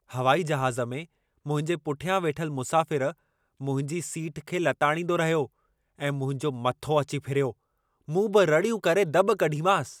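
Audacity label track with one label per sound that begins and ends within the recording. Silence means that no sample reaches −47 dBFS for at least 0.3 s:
1.460000	3.130000	sound
3.600000	5.470000	sound
5.990000	7.530000	sound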